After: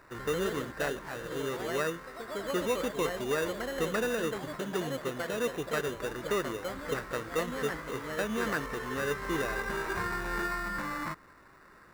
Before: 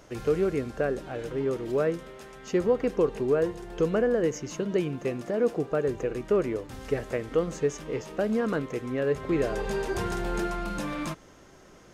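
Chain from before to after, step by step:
sample-rate reduction 3,200 Hz, jitter 0%
delay with pitch and tempo change per echo 91 ms, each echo +2 semitones, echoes 3, each echo −6 dB
flat-topped bell 1,400 Hz +11 dB 1.3 octaves
level −7.5 dB

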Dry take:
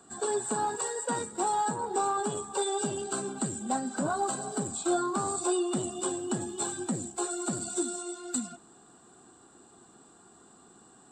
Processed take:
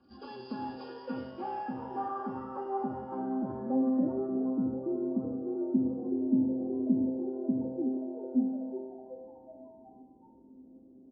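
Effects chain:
hearing-aid frequency compression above 1,800 Hz 1.5 to 1
high-pass filter 50 Hz
spectral tilt −4.5 dB per octave
comb filter 3.6 ms, depth 73%
low-pass filter sweep 3,900 Hz → 290 Hz, 0:00.75–0:04.67
tuned comb filter 130 Hz, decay 1.3 s, harmonics all, mix 90%
echo with shifted repeats 373 ms, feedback 49%, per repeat +130 Hz, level −13 dB
convolution reverb RT60 0.75 s, pre-delay 65 ms, DRR 12 dB
level +2 dB

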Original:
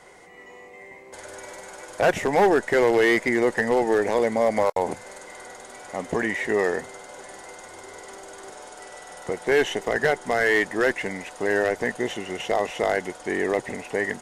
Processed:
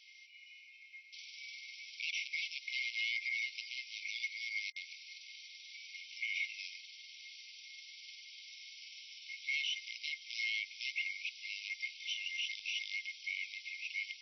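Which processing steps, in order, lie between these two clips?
brick-wall band-pass 2,100–5,900 Hz
brickwall limiter −29.5 dBFS, peak gain reduction 10.5 dB
level +1.5 dB

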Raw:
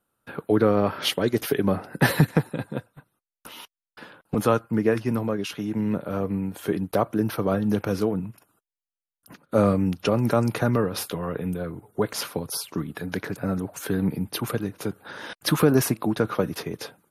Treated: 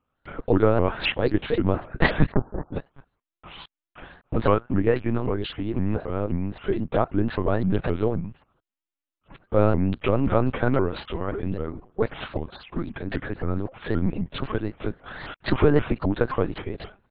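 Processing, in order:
0:02.32–0:02.74: Butterworth low-pass 1,400 Hz 48 dB per octave
linear-prediction vocoder at 8 kHz pitch kept
pitch modulation by a square or saw wave saw up 3.8 Hz, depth 250 cents
level +1 dB

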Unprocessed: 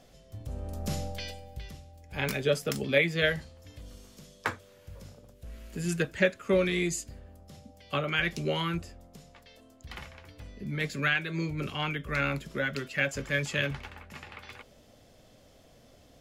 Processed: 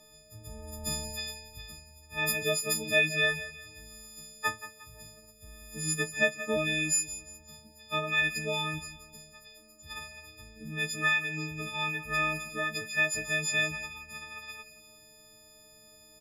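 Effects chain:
every partial snapped to a pitch grid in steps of 6 semitones
repeating echo 178 ms, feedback 37%, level −14 dB
level −5.5 dB

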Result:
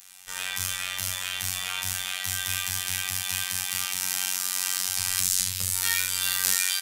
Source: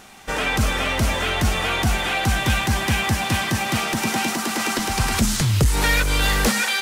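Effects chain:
parametric band 330 Hz −13 dB 1.6 octaves
on a send: ambience of single reflections 33 ms −4.5 dB, 74 ms −4.5 dB
on the sum: phases set to zero 92.3 Hz
first-order pre-emphasis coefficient 0.9
level +2 dB

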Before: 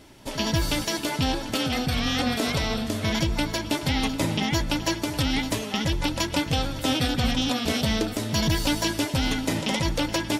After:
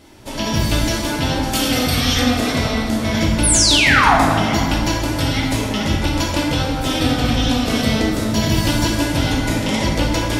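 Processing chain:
0:01.42–0:02.18: high-shelf EQ 5,700 Hz → 3,800 Hz +11.5 dB
0:03.43–0:04.16: sound drawn into the spectrogram fall 620–11,000 Hz −19 dBFS
dense smooth reverb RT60 2 s, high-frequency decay 0.45×, DRR −3.5 dB
level +1.5 dB

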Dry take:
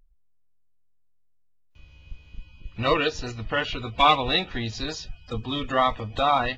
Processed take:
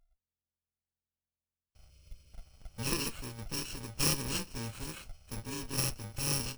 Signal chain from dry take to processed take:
samples in bit-reversed order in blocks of 64 samples
time-frequency box erased 0:01.90–0:02.33, 620–2,100 Hz
windowed peak hold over 3 samples
level −9 dB

